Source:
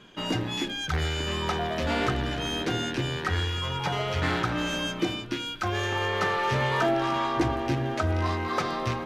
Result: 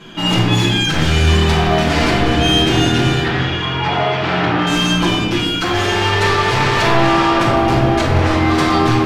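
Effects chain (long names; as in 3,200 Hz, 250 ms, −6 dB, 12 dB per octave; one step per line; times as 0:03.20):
notch filter 530 Hz, Q 12
sine wavefolder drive 11 dB, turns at −13.5 dBFS
0:03.22–0:04.67: band-pass filter 170–3,000 Hz
convolution reverb RT60 1.3 s, pre-delay 6 ms, DRR −6 dB
level −5.5 dB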